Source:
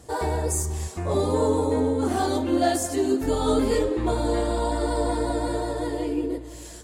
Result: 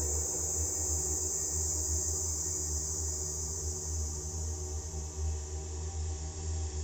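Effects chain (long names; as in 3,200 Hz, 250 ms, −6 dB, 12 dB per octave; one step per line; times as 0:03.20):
downsampling to 16,000 Hz
hard clipping −22 dBFS, distortion −11 dB
noise reduction from a noise print of the clip's start 10 dB
extreme stretch with random phases 28×, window 0.25 s, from 0:00.53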